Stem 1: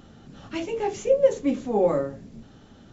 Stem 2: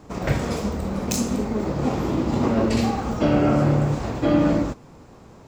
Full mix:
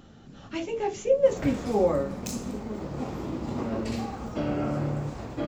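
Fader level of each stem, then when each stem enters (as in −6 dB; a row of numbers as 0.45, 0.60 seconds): −2.0, −10.0 decibels; 0.00, 1.15 seconds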